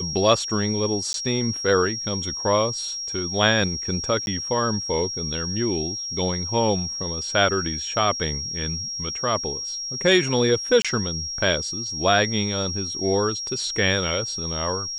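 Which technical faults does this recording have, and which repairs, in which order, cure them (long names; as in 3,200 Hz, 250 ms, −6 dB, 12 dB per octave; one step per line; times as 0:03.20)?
whistle 5,600 Hz −28 dBFS
0:01.13–0:01.14: drop-out 12 ms
0:04.26–0:04.27: drop-out 11 ms
0:10.82–0:10.85: drop-out 26 ms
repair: notch filter 5,600 Hz, Q 30
repair the gap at 0:01.13, 12 ms
repair the gap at 0:04.26, 11 ms
repair the gap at 0:10.82, 26 ms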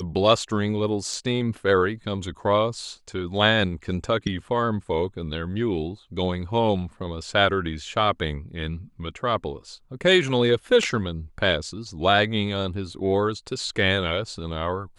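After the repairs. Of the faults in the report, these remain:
none of them is left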